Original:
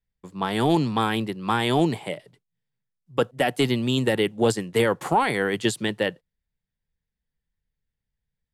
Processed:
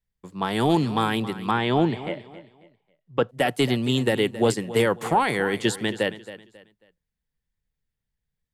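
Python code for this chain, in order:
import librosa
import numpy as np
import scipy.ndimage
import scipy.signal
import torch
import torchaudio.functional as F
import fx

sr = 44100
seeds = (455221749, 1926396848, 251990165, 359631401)

p1 = fx.lowpass(x, sr, hz=3300.0, slope=12, at=(1.51, 3.29))
y = p1 + fx.echo_feedback(p1, sr, ms=271, feedback_pct=30, wet_db=-15, dry=0)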